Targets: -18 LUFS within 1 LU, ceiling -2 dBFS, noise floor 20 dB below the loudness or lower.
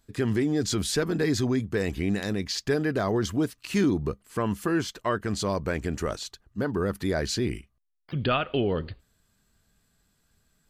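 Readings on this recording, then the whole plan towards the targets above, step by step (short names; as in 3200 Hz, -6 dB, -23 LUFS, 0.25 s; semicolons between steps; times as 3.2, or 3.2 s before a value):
loudness -28.0 LUFS; peak -13.0 dBFS; loudness target -18.0 LUFS
-> gain +10 dB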